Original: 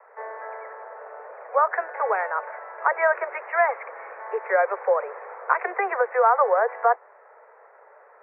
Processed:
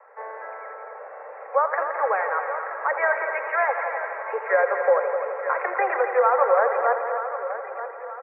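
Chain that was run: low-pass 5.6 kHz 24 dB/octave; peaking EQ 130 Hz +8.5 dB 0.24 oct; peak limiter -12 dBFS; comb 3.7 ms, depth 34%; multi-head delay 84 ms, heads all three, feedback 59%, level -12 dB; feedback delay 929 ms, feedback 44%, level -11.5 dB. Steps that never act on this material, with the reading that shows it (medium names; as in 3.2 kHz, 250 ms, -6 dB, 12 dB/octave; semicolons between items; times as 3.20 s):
low-pass 5.6 kHz: input has nothing above 2.4 kHz; peaking EQ 130 Hz: input has nothing below 340 Hz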